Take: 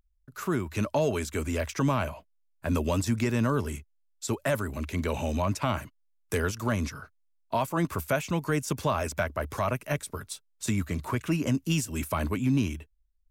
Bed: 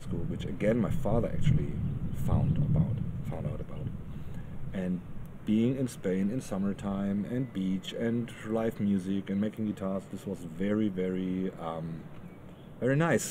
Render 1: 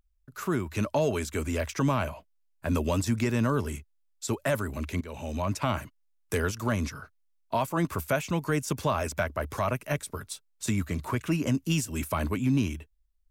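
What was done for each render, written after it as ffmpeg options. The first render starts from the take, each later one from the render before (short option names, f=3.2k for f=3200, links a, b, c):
-filter_complex "[0:a]asplit=2[a][b];[a]atrim=end=5.01,asetpts=PTS-STARTPTS,afade=t=out:st=5.006:d=0.004:c=hsin:silence=0.158489[c];[b]atrim=start=5.01,asetpts=PTS-STARTPTS,afade=t=in:d=0.58:silence=0.158489[d];[c][d]concat=n=2:v=0:a=1"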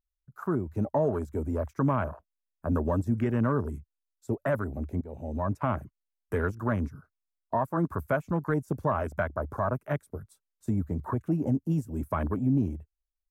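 -af "afwtdn=0.02,firequalizer=gain_entry='entry(1400,0);entry(2700,-12);entry(12000,0)':delay=0.05:min_phase=1"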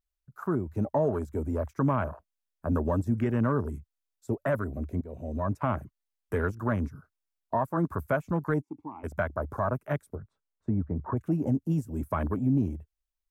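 -filter_complex "[0:a]asettb=1/sr,asplit=3[a][b][c];[a]atrim=end=4.524[d];[b]atrim=start=4.52:end=5.45,asetpts=PTS-STARTPTS,afade=t=in:d=0.004:c=qsin,afade=t=out:st=0.926:d=0.004:c=qsin,asuperstop=centerf=830:order=4:qfactor=6.3[e];[c]atrim=start=5.446[f];[d][e]acrossfade=d=0.004:c1=hsin:c2=qsin[g];[g][f]acrossfade=d=0.004:c1=qsin:c2=hsin,asplit=3[h][i][j];[h]afade=t=out:st=8.6:d=0.02[k];[i]asplit=3[l][m][n];[l]bandpass=f=300:t=q:w=8,volume=0dB[o];[m]bandpass=f=870:t=q:w=8,volume=-6dB[p];[n]bandpass=f=2.24k:t=q:w=8,volume=-9dB[q];[o][p][q]amix=inputs=3:normalize=0,afade=t=in:st=8.6:d=0.02,afade=t=out:st=9.03:d=0.02[r];[j]afade=t=in:st=9.03:d=0.02[s];[k][r][s]amix=inputs=3:normalize=0,asettb=1/sr,asplit=3[t][u][v];[t]atrim=end=10.154[w];[u]atrim=start=10.15:end=11.17,asetpts=PTS-STARTPTS,afade=t=in:d=0.004:c=qsin,afade=t=out:st=1.016:d=0.004:c=qsin,lowpass=1.6k[x];[v]atrim=start=11.166[y];[w][x]acrossfade=d=0.004:c1=hsin:c2=qsin[z];[z][y]acrossfade=d=0.004:c1=qsin:c2=hsin"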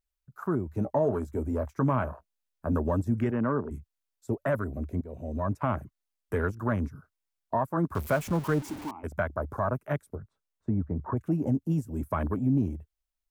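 -filter_complex "[0:a]asettb=1/sr,asplit=3[a][b][c];[a]atrim=end=0.704[d];[b]atrim=start=0.7:end=2.74,asetpts=PTS-STARTPTS,afade=t=in:d=0.004:c=qsin,afade=t=out:st=2.036:d=0.004:c=qsin,asplit=2[e][f];[f]adelay=16,volume=-11.5dB[g];[e][g]amix=inputs=2:normalize=0,atrim=end_sample=89964[h];[c]atrim=start=2.736[i];[d][h]acrossfade=d=0.004:c1=hsin:c2=qsin[j];[j][i]acrossfade=d=0.004:c1=qsin:c2=hsin,asplit=3[k][l][m];[k]afade=t=out:st=3.3:d=0.02[n];[l]highpass=160,lowpass=2.6k,afade=t=in:st=3.3:d=0.02,afade=t=out:st=3.7:d=0.02[o];[m]afade=t=in:st=3.7:d=0.02[p];[n][o][p]amix=inputs=3:normalize=0,asettb=1/sr,asplit=3[q][r][s];[q]atrim=end=7.954[t];[r]atrim=start=7.95:end=8.91,asetpts=PTS-STARTPTS,afade=t=in:d=0.004:c=qsin,afade=t=out:st=0.956:d=0.004:c=qsin,aeval=exprs='val(0)+0.5*0.0168*sgn(val(0))':c=same[u];[s]atrim=start=8.906[v];[t][u]acrossfade=d=0.004:c1=hsin:c2=qsin[w];[w][v]acrossfade=d=0.004:c1=qsin:c2=hsin"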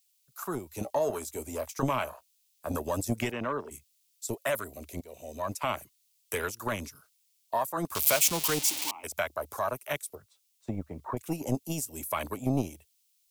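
-filter_complex "[0:a]acrossover=split=440[a][b];[a]aeval=exprs='0.141*(cos(1*acos(clip(val(0)/0.141,-1,1)))-cos(1*PI/2))+0.0501*(cos(3*acos(clip(val(0)/0.141,-1,1)))-cos(3*PI/2))+0.00562*(cos(5*acos(clip(val(0)/0.141,-1,1)))-cos(5*PI/2))':c=same[c];[b]aexciter=amount=8.3:drive=4.2:freq=2.3k[d];[c][d]amix=inputs=2:normalize=0"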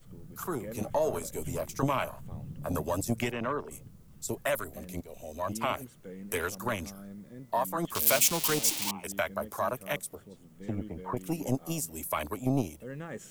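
-filter_complex "[1:a]volume=-14.5dB[a];[0:a][a]amix=inputs=2:normalize=0"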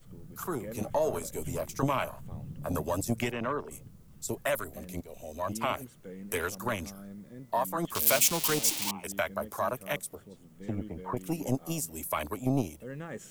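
-af anull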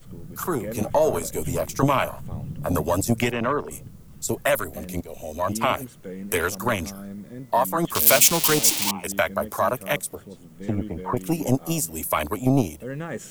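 -af "volume=8.5dB"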